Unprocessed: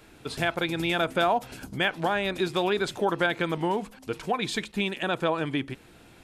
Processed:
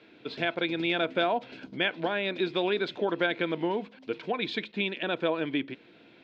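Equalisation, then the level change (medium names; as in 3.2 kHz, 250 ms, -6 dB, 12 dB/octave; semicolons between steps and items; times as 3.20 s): distance through air 69 m; cabinet simulation 380–3500 Hz, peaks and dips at 400 Hz -4 dB, 570 Hz -3 dB, 810 Hz -9 dB, 1.2 kHz -9 dB, 1.8 kHz -4 dB, 2.9 kHz -4 dB; peaking EQ 1.2 kHz -7.5 dB 2.8 oct; +8.5 dB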